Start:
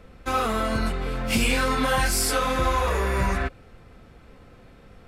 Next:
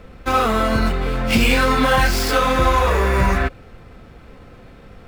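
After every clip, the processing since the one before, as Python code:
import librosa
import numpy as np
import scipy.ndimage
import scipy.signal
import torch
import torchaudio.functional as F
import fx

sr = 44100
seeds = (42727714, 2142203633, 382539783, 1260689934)

y = scipy.signal.medfilt(x, 5)
y = y * librosa.db_to_amplitude(7.0)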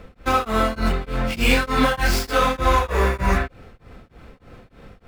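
y = x * np.abs(np.cos(np.pi * 3.3 * np.arange(len(x)) / sr))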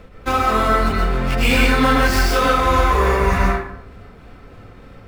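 y = fx.rev_plate(x, sr, seeds[0], rt60_s=0.69, hf_ratio=0.55, predelay_ms=100, drr_db=-2.0)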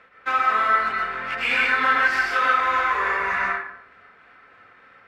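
y = fx.bandpass_q(x, sr, hz=1700.0, q=2.1)
y = y * librosa.db_to_amplitude(3.0)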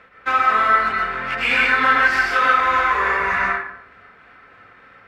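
y = fx.low_shelf(x, sr, hz=210.0, db=6.5)
y = y * librosa.db_to_amplitude(3.5)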